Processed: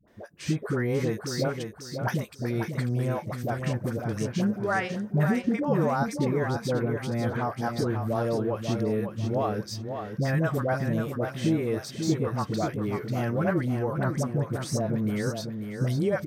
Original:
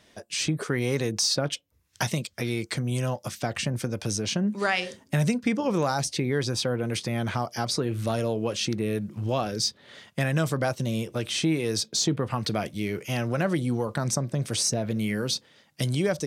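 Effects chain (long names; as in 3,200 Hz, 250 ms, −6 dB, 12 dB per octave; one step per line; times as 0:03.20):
flat-topped bell 5,100 Hz −12.5 dB 2.5 octaves
all-pass dispersion highs, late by 78 ms, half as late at 610 Hz
on a send: repeating echo 542 ms, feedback 28%, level −7 dB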